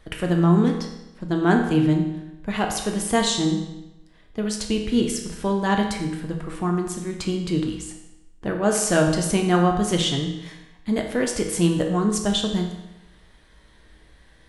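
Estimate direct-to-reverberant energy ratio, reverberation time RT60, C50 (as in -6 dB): 1.5 dB, 0.95 s, 5.5 dB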